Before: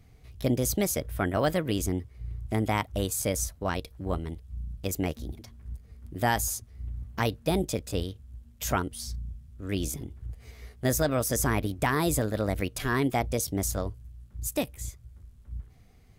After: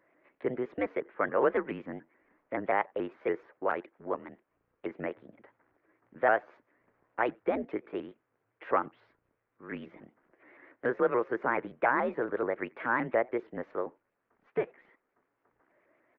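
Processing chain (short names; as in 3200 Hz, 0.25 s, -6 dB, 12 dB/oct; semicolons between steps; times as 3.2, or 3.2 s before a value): speakerphone echo 90 ms, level -28 dB; mistuned SSB -120 Hz 470–2200 Hz; shaped vibrato saw up 7 Hz, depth 160 cents; gain +2 dB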